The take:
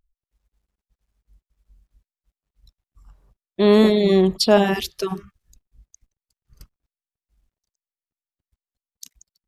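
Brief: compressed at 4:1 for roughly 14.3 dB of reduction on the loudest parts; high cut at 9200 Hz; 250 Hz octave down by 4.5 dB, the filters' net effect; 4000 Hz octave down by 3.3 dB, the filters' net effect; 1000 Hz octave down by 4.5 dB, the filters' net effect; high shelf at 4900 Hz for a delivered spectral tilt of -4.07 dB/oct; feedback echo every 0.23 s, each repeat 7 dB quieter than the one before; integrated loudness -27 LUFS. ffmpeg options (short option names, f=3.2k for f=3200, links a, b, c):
-af "lowpass=9.2k,equalizer=f=250:t=o:g=-6,equalizer=f=1k:t=o:g=-5.5,equalizer=f=4k:t=o:g=-8,highshelf=f=4.9k:g=8.5,acompressor=threshold=-30dB:ratio=4,aecho=1:1:230|460|690|920|1150:0.447|0.201|0.0905|0.0407|0.0183,volume=6dB"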